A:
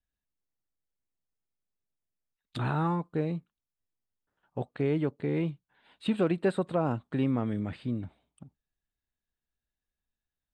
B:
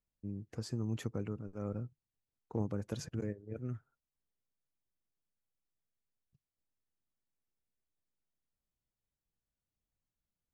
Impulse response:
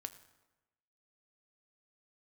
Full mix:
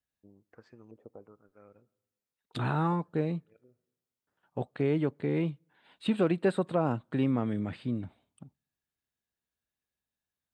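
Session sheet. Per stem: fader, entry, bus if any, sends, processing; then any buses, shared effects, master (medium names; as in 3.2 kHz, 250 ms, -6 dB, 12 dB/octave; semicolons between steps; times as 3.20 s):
0.0 dB, 0.00 s, send -24 dB, high-pass 89 Hz
-12.0 dB, 0.00 s, send -7.5 dB, tone controls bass -14 dB, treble +3 dB; transient shaper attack +3 dB, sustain -3 dB; LFO low-pass saw up 1.1 Hz 440–3400 Hz; auto duck -14 dB, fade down 1.45 s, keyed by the first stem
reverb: on, RT60 1.1 s, pre-delay 5 ms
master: none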